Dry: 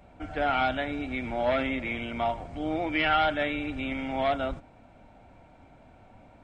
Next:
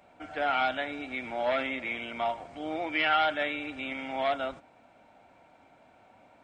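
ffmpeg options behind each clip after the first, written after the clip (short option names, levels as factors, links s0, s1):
-af "highpass=f=530:p=1"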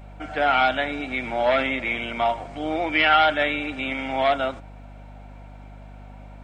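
-af "aeval=exprs='val(0)+0.00355*(sin(2*PI*50*n/s)+sin(2*PI*2*50*n/s)/2+sin(2*PI*3*50*n/s)/3+sin(2*PI*4*50*n/s)/4+sin(2*PI*5*50*n/s)/5)':c=same,volume=2.51"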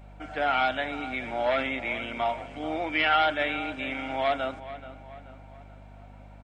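-filter_complex "[0:a]asplit=2[s0][s1];[s1]adelay=431,lowpass=f=3300:p=1,volume=0.2,asplit=2[s2][s3];[s3]adelay=431,lowpass=f=3300:p=1,volume=0.48,asplit=2[s4][s5];[s5]adelay=431,lowpass=f=3300:p=1,volume=0.48,asplit=2[s6][s7];[s7]adelay=431,lowpass=f=3300:p=1,volume=0.48,asplit=2[s8][s9];[s9]adelay=431,lowpass=f=3300:p=1,volume=0.48[s10];[s0][s2][s4][s6][s8][s10]amix=inputs=6:normalize=0,volume=0.531"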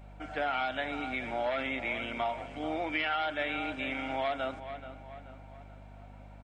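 -af "acompressor=threshold=0.0501:ratio=6,volume=0.794"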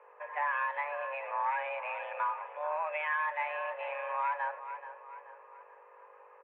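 -af "highpass=f=190:t=q:w=0.5412,highpass=f=190:t=q:w=1.307,lowpass=f=2000:t=q:w=0.5176,lowpass=f=2000:t=q:w=0.7071,lowpass=f=2000:t=q:w=1.932,afreqshift=290"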